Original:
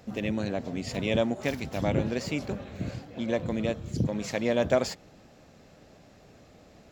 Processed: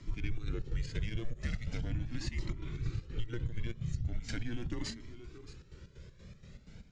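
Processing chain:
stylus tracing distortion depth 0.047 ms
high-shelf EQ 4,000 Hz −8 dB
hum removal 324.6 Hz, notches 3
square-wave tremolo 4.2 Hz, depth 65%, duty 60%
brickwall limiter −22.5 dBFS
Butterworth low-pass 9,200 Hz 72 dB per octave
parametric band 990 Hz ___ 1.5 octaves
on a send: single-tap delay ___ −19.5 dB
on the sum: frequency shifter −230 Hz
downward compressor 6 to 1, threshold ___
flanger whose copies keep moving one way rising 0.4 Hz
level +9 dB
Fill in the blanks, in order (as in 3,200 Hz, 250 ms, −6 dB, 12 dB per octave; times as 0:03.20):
−11 dB, 625 ms, −37 dBFS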